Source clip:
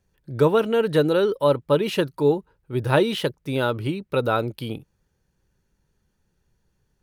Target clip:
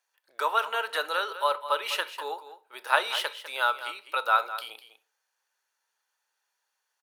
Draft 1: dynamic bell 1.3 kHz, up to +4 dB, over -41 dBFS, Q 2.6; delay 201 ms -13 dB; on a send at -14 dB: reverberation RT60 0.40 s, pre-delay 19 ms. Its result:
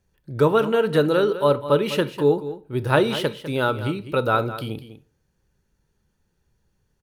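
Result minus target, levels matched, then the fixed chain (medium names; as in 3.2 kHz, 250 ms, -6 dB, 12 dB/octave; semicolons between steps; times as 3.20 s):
1 kHz band -6.0 dB
dynamic bell 1.3 kHz, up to +4 dB, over -41 dBFS, Q 2.6; high-pass 780 Hz 24 dB/octave; delay 201 ms -13 dB; on a send at -14 dB: reverberation RT60 0.40 s, pre-delay 19 ms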